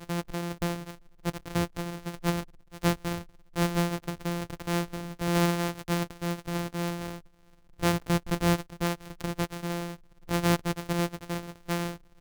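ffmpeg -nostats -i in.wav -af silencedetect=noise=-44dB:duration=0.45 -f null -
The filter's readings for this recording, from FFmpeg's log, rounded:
silence_start: 7.19
silence_end: 7.79 | silence_duration: 0.60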